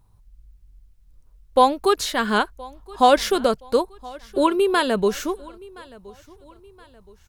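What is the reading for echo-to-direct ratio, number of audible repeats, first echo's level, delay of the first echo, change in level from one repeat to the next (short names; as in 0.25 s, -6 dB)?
-21.5 dB, 2, -22.5 dB, 1.021 s, -8.0 dB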